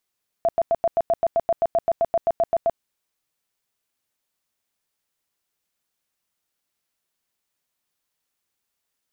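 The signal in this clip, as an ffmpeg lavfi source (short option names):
-f lavfi -i "aevalsrc='0.168*sin(2*PI*672*mod(t,0.13))*lt(mod(t,0.13),25/672)':d=2.34:s=44100"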